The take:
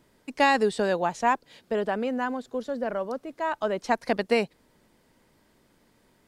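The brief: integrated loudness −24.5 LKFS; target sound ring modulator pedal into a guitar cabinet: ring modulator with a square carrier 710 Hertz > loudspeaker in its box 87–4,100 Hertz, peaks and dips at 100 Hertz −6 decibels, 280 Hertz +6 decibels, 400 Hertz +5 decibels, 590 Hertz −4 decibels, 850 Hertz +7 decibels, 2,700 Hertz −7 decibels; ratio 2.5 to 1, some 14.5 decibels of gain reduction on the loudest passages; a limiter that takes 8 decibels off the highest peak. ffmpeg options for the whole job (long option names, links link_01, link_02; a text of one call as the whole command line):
ffmpeg -i in.wav -af "acompressor=threshold=-40dB:ratio=2.5,alimiter=level_in=6.5dB:limit=-24dB:level=0:latency=1,volume=-6.5dB,aeval=exprs='val(0)*sgn(sin(2*PI*710*n/s))':channel_layout=same,highpass=87,equalizer=frequency=100:width_type=q:width=4:gain=-6,equalizer=frequency=280:width_type=q:width=4:gain=6,equalizer=frequency=400:width_type=q:width=4:gain=5,equalizer=frequency=590:width_type=q:width=4:gain=-4,equalizer=frequency=850:width_type=q:width=4:gain=7,equalizer=frequency=2700:width_type=q:width=4:gain=-7,lowpass=frequency=4100:width=0.5412,lowpass=frequency=4100:width=1.3066,volume=15.5dB" out.wav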